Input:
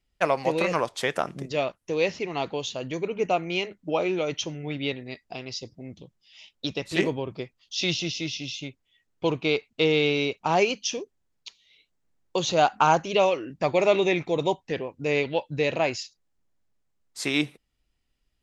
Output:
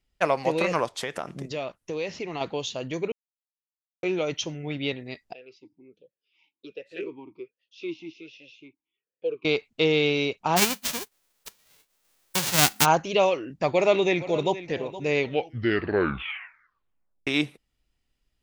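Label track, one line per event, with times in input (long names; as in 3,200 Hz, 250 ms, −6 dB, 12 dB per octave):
1.030000	2.410000	downward compressor 2.5 to 1, threshold −29 dBFS
3.120000	4.030000	silence
5.330000	9.450000	formant filter swept between two vowels e-u 1.3 Hz
10.560000	12.840000	spectral envelope flattened exponent 0.1
13.700000	14.600000	delay throw 470 ms, feedback 30%, level −14.5 dB
15.170000	15.170000	tape stop 2.10 s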